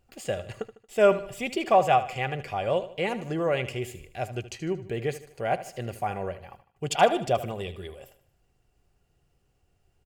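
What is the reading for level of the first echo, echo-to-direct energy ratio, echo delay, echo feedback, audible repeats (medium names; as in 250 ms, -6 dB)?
-14.0 dB, -13.0 dB, 76 ms, 44%, 3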